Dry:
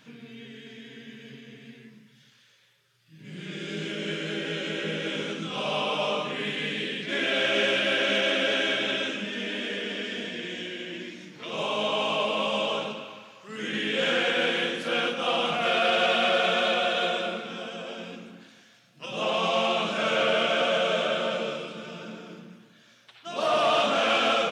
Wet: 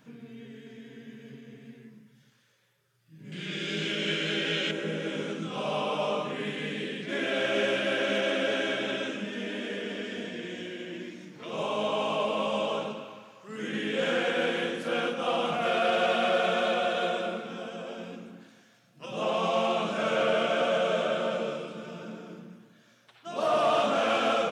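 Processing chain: peaking EQ 3.4 kHz -10.5 dB 2.1 oct, from 3.32 s +5 dB, from 4.71 s -7.5 dB

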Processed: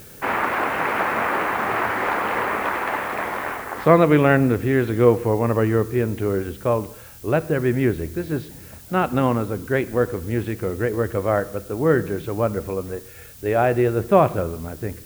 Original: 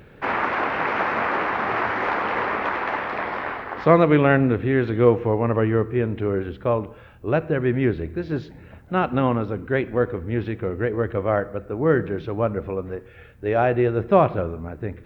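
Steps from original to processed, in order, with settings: added noise blue -46 dBFS; trim +1 dB

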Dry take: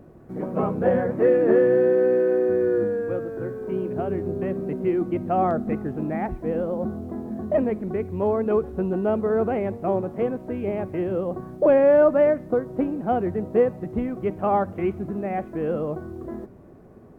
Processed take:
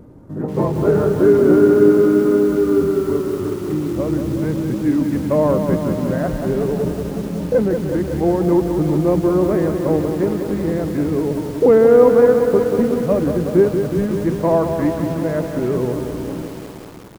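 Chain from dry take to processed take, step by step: pitch shift -3.5 st; bit-crushed delay 185 ms, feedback 80%, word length 7-bit, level -7 dB; trim +5.5 dB

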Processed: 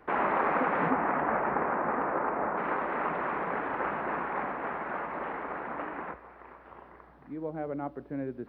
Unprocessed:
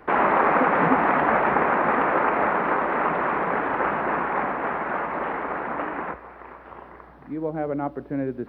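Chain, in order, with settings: 0.90–2.56 s: low-pass 2.2 kHz -> 1.4 kHz 12 dB/octave; trim -8 dB

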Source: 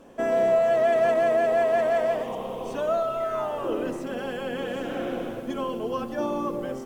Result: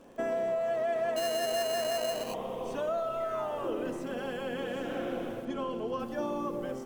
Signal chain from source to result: compression, threshold -24 dBFS, peak gain reduction 7 dB; feedback comb 170 Hz, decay 1.9 s, mix 60%; 1.16–2.34 s: sample-rate reducer 3.5 kHz, jitter 0%; 5.45–6.00 s: distance through air 50 m; crackle 23 per s -52 dBFS; trim +3.5 dB

